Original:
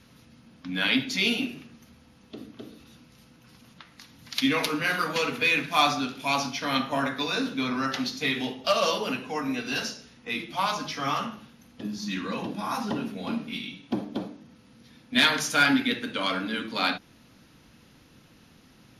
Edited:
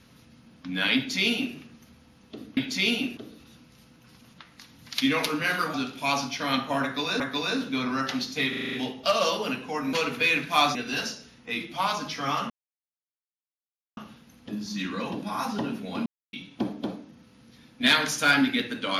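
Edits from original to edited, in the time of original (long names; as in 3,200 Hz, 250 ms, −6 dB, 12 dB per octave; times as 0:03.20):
0:00.96–0:01.56: duplicate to 0:02.57
0:05.14–0:05.96: move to 0:09.54
0:07.05–0:07.42: repeat, 2 plays
0:08.34: stutter 0.04 s, 7 plays
0:11.29: splice in silence 1.47 s
0:13.38–0:13.65: silence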